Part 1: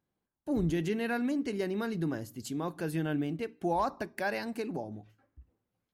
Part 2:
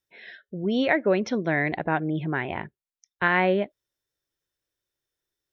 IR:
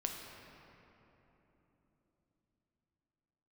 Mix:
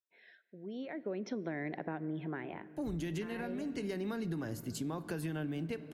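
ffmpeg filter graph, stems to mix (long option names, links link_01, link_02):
-filter_complex "[0:a]acrossover=split=180|810[link_01][link_02][link_03];[link_01]acompressor=threshold=-42dB:ratio=4[link_04];[link_02]acompressor=threshold=-36dB:ratio=4[link_05];[link_03]acompressor=threshold=-42dB:ratio=4[link_06];[link_04][link_05][link_06]amix=inputs=3:normalize=0,adelay=2300,volume=0.5dB,asplit=2[link_07][link_08];[link_08]volume=-12.5dB[link_09];[1:a]equalizer=frequency=3300:width_type=o:width=0.77:gain=-3,acrossover=split=410[link_10][link_11];[link_11]acompressor=threshold=-39dB:ratio=2[link_12];[link_10][link_12]amix=inputs=2:normalize=0,highpass=230,volume=-6dB,afade=type=in:start_time=0.87:duration=0.55:silence=0.281838,afade=type=out:start_time=2.23:duration=0.62:silence=0.251189,asplit=3[link_13][link_14][link_15];[link_14]volume=-14dB[link_16];[link_15]apad=whole_len=363236[link_17];[link_07][link_17]sidechaincompress=threshold=-49dB:ratio=8:attack=16:release=471[link_18];[2:a]atrim=start_sample=2205[link_19];[link_09][link_16]amix=inputs=2:normalize=0[link_20];[link_20][link_19]afir=irnorm=-1:irlink=0[link_21];[link_18][link_13][link_21]amix=inputs=3:normalize=0,lowshelf=frequency=90:gain=6.5,acompressor=threshold=-34dB:ratio=6"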